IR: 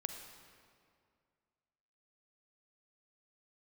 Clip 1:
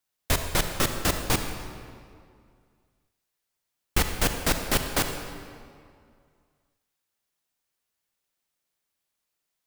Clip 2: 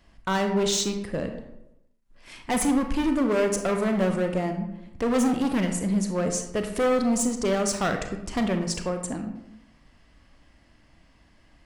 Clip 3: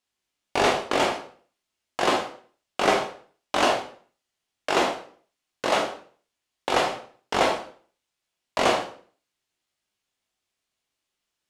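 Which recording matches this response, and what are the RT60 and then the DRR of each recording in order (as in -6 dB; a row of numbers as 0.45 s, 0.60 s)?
1; 2.2 s, 0.90 s, 0.45 s; 5.5 dB, 5.0 dB, 0.5 dB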